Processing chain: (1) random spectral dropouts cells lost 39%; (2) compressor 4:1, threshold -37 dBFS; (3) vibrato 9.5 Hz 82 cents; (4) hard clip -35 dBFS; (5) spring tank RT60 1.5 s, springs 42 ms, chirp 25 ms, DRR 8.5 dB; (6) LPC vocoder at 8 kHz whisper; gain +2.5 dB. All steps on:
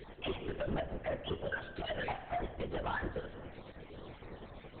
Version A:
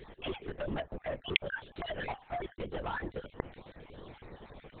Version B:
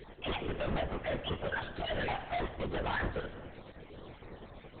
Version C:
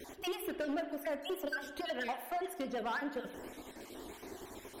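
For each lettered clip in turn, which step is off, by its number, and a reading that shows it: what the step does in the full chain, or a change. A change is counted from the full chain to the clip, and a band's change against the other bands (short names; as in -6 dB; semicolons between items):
5, momentary loudness spread change +6 LU; 2, mean gain reduction 6.5 dB; 6, 125 Hz band -17.5 dB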